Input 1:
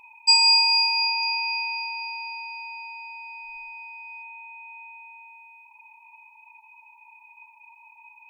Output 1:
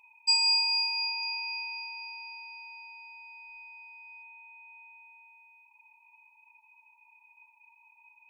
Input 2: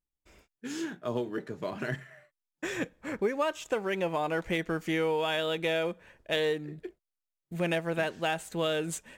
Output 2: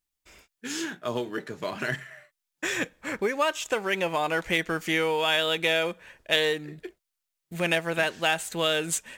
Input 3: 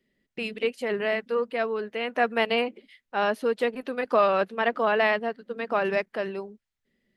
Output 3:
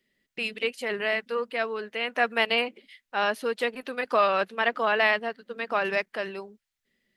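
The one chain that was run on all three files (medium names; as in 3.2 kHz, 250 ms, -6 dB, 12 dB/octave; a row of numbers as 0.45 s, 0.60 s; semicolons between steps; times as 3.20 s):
tilt shelf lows -5 dB; normalise loudness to -27 LUFS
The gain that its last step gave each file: -12.0 dB, +5.0 dB, -0.5 dB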